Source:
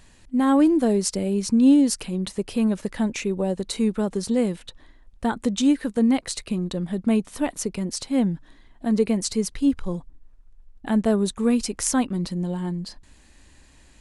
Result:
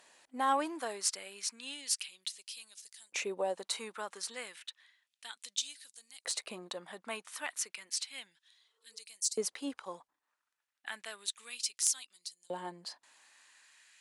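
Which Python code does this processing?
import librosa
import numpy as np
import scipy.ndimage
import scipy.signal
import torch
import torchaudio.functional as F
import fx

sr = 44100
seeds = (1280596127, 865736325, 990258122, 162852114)

y = fx.spec_repair(x, sr, seeds[0], start_s=8.53, length_s=0.41, low_hz=260.0, high_hz=1500.0, source='both')
y = fx.filter_lfo_highpass(y, sr, shape='saw_up', hz=0.32, low_hz=550.0, high_hz=6600.0, q=1.3)
y = fx.cheby_harmonics(y, sr, harmonics=(3, 5), levels_db=(-12, -16), full_scale_db=-4.0)
y = y * librosa.db_to_amplitude(-5.0)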